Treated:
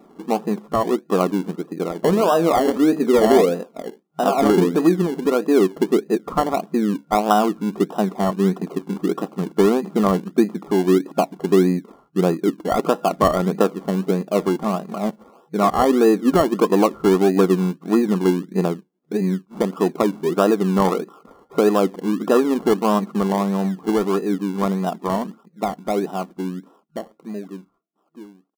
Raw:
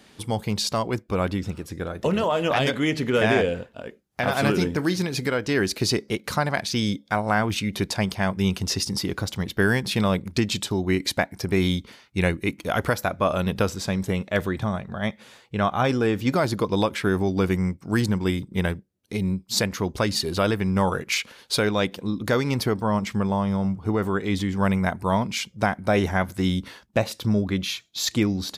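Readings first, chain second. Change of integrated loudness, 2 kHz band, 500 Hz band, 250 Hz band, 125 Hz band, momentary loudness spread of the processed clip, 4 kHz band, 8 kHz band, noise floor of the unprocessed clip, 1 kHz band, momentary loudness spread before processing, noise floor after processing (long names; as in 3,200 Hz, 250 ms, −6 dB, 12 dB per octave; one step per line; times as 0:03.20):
+4.5 dB, −6.0 dB, +7.0 dB, +5.5 dB, −1.5 dB, 11 LU, −6.5 dB, −4.0 dB, −56 dBFS, +5.5 dB, 6 LU, −60 dBFS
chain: fade-out on the ending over 5.88 s
brick-wall band-pass 160–1,400 Hz
comb filter 2.7 ms, depth 33%
in parallel at −8 dB: sample-and-hold swept by an LFO 28×, swing 60% 1.6 Hz
on the sum: level +5 dB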